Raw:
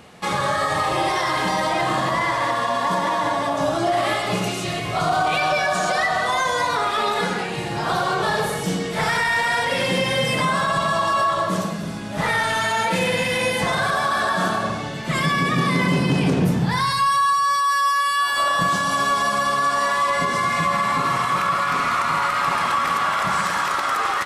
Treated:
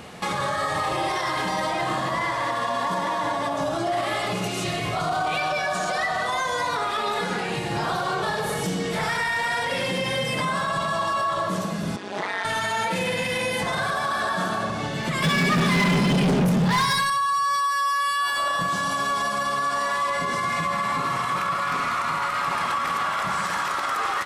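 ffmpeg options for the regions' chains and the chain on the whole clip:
ffmpeg -i in.wav -filter_complex "[0:a]asettb=1/sr,asplit=3[link_01][link_02][link_03];[link_01]atrim=end=11.964[link_04];[link_02]atrim=start=11.96:end=12.45,asetpts=PTS-STARTPTS,afade=type=in:duration=0.004:curve=qsin,afade=type=out:start_time=0.486:duration=0.004:curve=qsin,tremolo=f=190:d=1,aeval=exprs='sgn(val(0))*max(abs(val(0))-0.00211,0)':channel_layout=same,highpass=280,lowpass=6300[link_05];[link_03]atrim=start=12.446[link_06];[link_04][link_05]acrossfade=duration=0.004:curve1=hsin:curve2=qsin[link_07];[link_07][link_06]acrossfade=duration=0.004:curve1=qsin:curve2=hsin,asettb=1/sr,asplit=3[link_08][link_09][link_10];[link_08]atrim=end=15.224[link_11];[link_09]atrim=start=15.22:end=17.1,asetpts=PTS-STARTPTS,afade=type=in:duration=0.004:curve=qsin,afade=type=out:start_time=1.876:duration=0.004:curve=qsin,aecho=1:1:4.9:0.75,atrim=end_sample=82908,acontrast=31,asoftclip=type=hard:threshold=-13dB[link_12];[link_10]atrim=start=17.096[link_13];[link_11][link_12]acrossfade=duration=0.004:curve1=hsin:curve2=qsin[link_14];[link_14][link_13]acrossfade=duration=0.004:curve1=qsin:curve2=hsin,acontrast=22,alimiter=limit=-17.5dB:level=0:latency=1:release=322" out.wav

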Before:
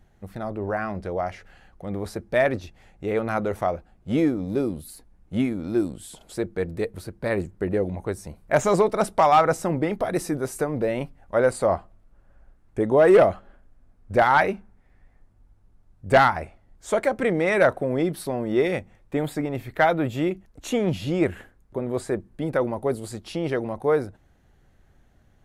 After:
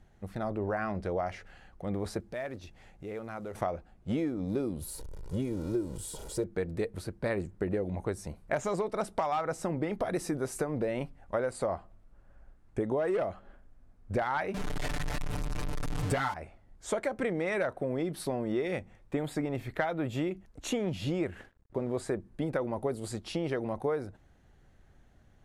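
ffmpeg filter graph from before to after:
ffmpeg -i in.wav -filter_complex "[0:a]asettb=1/sr,asplit=3[link_01][link_02][link_03];[link_01]atrim=end=2.204[link_04];[link_02]atrim=start=2.2:end=3.55,asetpts=PTS-STARTPTS,afade=type=in:duration=0.004:curve=qsin,afade=type=out:start_time=1.346:duration=0.004:curve=qsin,equalizer=frequency=66:width_type=o:width=0.35:gain=-4,acrusher=bits=8:mode=log:mix=0:aa=0.000001,acompressor=threshold=-44dB:ratio=2:attack=3.2:release=140:knee=1:detection=peak[link_05];[link_03]atrim=start=3.546[link_06];[link_04][link_05]acrossfade=duration=0.004:curve1=hsin:curve2=qsin[link_07];[link_07][link_06]acrossfade=duration=0.004:curve1=qsin:curve2=hsin,asettb=1/sr,asplit=3[link_08][link_09][link_10];[link_08]atrim=end=4.814[link_11];[link_09]atrim=start=4.81:end=6.44,asetpts=PTS-STARTPTS,afade=type=in:duration=0.004:curve=qsin,afade=type=out:start_time=1.626:duration=0.004:curve=qsin,aeval=exprs='val(0)+0.5*0.0141*sgn(val(0))':channel_layout=same,equalizer=frequency=2200:width_type=o:width=2:gain=-11.5,aecho=1:1:2.1:0.56,atrim=end_sample=71883[link_12];[link_10]atrim=start=6.436[link_13];[link_11][link_12]acrossfade=duration=0.004:curve1=hsin:curve2=qsin[link_14];[link_14][link_13]acrossfade=duration=0.004:curve1=qsin:curve2=hsin,asettb=1/sr,asplit=3[link_15][link_16][link_17];[link_15]atrim=end=14.544[link_18];[link_16]atrim=start=14.54:end=16.34,asetpts=PTS-STARTPTS,afade=type=in:duration=0.004:curve=qsin,afade=type=out:start_time=1.796:duration=0.004:curve=qsin,aeval=exprs='val(0)+0.5*0.0473*sgn(val(0))':channel_layout=same,aecho=1:1:6.8:0.95,atrim=end_sample=79380[link_19];[link_17]atrim=start=16.336[link_20];[link_18][link_19]acrossfade=duration=0.004:curve1=hsin:curve2=qsin[link_21];[link_21][link_20]acrossfade=duration=0.004:curve1=qsin:curve2=hsin,asettb=1/sr,asplit=3[link_22][link_23][link_24];[link_22]atrim=end=21.304[link_25];[link_23]atrim=start=21.3:end=21.95,asetpts=PTS-STARTPTS,afade=type=in:duration=0.004:curve=qsin,afade=type=out:start_time=0.646:duration=0.004:curve=qsin,highshelf=frequency=5100:gain=-6,aeval=exprs='sgn(val(0))*max(abs(val(0))-0.00119,0)':channel_layout=same[link_26];[link_24]atrim=start=21.946[link_27];[link_25][link_26]acrossfade=duration=0.004:curve1=hsin:curve2=qsin[link_28];[link_28][link_27]acrossfade=duration=0.004:curve1=qsin:curve2=hsin,lowpass=11000,acompressor=threshold=-25dB:ratio=12,volume=-2dB" out.wav

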